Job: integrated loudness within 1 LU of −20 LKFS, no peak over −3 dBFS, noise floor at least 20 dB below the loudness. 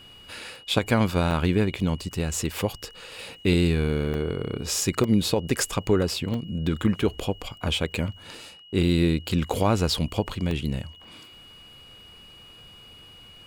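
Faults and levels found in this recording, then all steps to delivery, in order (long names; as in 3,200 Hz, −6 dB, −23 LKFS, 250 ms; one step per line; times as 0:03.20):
number of dropouts 8; longest dropout 2.2 ms; interfering tone 2,900 Hz; level of the tone −47 dBFS; integrated loudness −25.5 LKFS; sample peak −7.5 dBFS; target loudness −20.0 LKFS
→ repair the gap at 0:01.31/0:02.34/0:04.14/0:05.04/0:06.34/0:07.22/0:08.35/0:10.51, 2.2 ms
notch filter 2,900 Hz, Q 30
level +5.5 dB
brickwall limiter −3 dBFS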